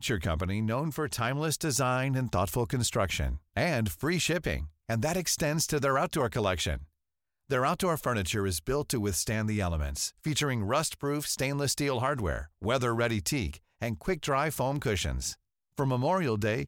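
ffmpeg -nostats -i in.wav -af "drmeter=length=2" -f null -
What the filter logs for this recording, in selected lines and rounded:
Channel 1: DR: 10.5
Overall DR: 10.5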